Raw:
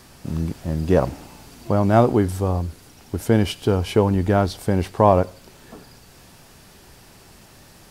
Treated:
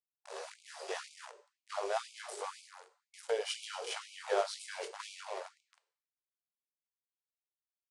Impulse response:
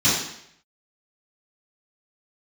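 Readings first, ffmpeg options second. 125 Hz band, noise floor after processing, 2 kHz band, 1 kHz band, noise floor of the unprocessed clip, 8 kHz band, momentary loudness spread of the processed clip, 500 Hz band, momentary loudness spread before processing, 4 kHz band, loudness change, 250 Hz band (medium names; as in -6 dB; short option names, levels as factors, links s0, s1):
under -40 dB, under -85 dBFS, -10.5 dB, -17.5 dB, -48 dBFS, -7.0 dB, 18 LU, -18.0 dB, 13 LU, -7.5 dB, -19.5 dB, under -35 dB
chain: -filter_complex "[0:a]highpass=85,asplit=2[s0][s1];[s1]adelay=247,lowpass=f=2100:p=1,volume=0.224,asplit=2[s2][s3];[s3]adelay=247,lowpass=f=2100:p=1,volume=0.15[s4];[s0][s2][s4]amix=inputs=3:normalize=0,flanger=delay=17.5:depth=2.8:speed=3,bandreject=f=107.1:t=h:w=4,bandreject=f=214.2:t=h:w=4,bandreject=f=321.3:t=h:w=4,aeval=exprs='sgn(val(0))*max(abs(val(0))-0.0188,0)':c=same,lowshelf=f=150:g=8.5,aresample=22050,aresample=44100,lowshelf=f=310:g=-9,acrossover=split=470|3000[s5][s6][s7];[s6]acompressor=threshold=0.00631:ratio=2[s8];[s5][s8][s7]amix=inputs=3:normalize=0,asplit=2[s9][s10];[1:a]atrim=start_sample=2205,asetrate=52920,aresample=44100[s11];[s10][s11]afir=irnorm=-1:irlink=0,volume=0.0422[s12];[s9][s12]amix=inputs=2:normalize=0,alimiter=limit=0.168:level=0:latency=1:release=301,afftfilt=real='re*gte(b*sr/1024,350*pow(2200/350,0.5+0.5*sin(2*PI*2*pts/sr)))':imag='im*gte(b*sr/1024,350*pow(2200/350,0.5+0.5*sin(2*PI*2*pts/sr)))':win_size=1024:overlap=0.75,volume=1.19"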